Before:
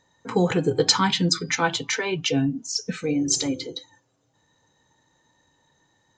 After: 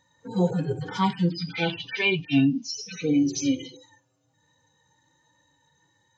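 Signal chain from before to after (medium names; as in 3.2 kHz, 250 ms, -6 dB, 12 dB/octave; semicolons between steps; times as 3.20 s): harmonic-percussive separation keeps harmonic; 1.30–3.77 s: FFT filter 140 Hz 0 dB, 220 Hz +5 dB, 690 Hz -4 dB, 1.7 kHz -5 dB, 2.5 kHz +14 dB, 5.8 kHz +10 dB, 8.6 kHz -26 dB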